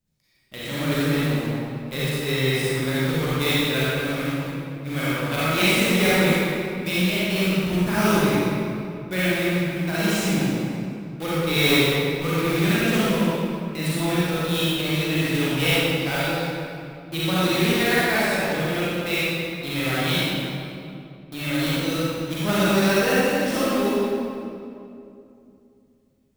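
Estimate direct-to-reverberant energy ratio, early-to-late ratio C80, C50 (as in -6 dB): -10.0 dB, -3.5 dB, -7.5 dB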